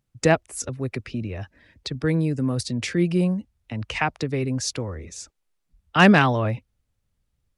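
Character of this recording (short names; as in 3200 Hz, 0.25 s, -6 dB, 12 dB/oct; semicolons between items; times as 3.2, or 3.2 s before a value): noise floor -75 dBFS; spectral tilt -5.0 dB/oct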